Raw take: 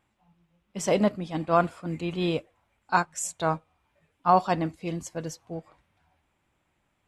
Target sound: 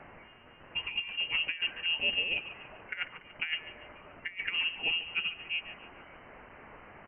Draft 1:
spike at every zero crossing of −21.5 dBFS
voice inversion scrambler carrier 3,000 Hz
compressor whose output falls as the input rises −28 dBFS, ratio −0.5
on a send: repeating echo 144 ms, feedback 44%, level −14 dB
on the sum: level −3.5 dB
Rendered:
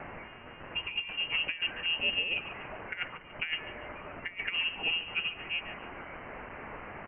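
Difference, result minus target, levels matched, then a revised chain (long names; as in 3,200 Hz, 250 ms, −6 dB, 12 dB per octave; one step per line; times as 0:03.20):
spike at every zero crossing: distortion +8 dB
spike at every zero crossing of −29.5 dBFS
voice inversion scrambler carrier 3,000 Hz
compressor whose output falls as the input rises −28 dBFS, ratio −0.5
on a send: repeating echo 144 ms, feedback 44%, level −14 dB
on the sum: level −3.5 dB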